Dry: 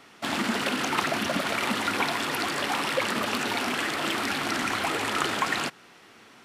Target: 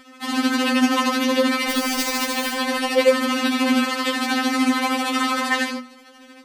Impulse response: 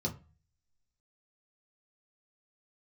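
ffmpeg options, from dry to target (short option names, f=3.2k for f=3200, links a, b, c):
-filter_complex "[0:a]asplit=3[a][b][c];[a]afade=t=out:st=1.69:d=0.02[d];[b]aeval=exprs='(mod(12.6*val(0)+1,2)-1)/12.6':c=same,afade=t=in:st=1.69:d=0.02,afade=t=out:st=2.52:d=0.02[e];[c]afade=t=in:st=2.52:d=0.02[f];[d][e][f]amix=inputs=3:normalize=0,tremolo=f=13:d=0.61,asplit=2[g][h];[1:a]atrim=start_sample=2205,adelay=90[i];[h][i]afir=irnorm=-1:irlink=0,volume=-7.5dB[j];[g][j]amix=inputs=2:normalize=0,afftfilt=real='re*3.46*eq(mod(b,12),0)':imag='im*3.46*eq(mod(b,12),0)':win_size=2048:overlap=0.75,volume=8.5dB"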